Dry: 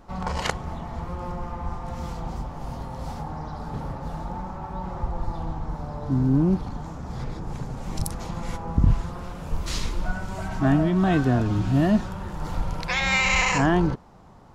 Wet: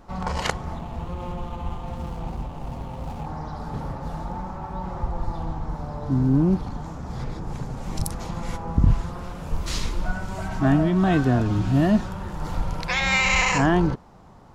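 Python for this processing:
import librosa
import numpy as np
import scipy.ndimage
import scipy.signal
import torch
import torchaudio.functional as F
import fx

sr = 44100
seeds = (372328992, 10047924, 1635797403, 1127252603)

y = fx.median_filter(x, sr, points=25, at=(0.79, 3.26))
y = y * 10.0 ** (1.0 / 20.0)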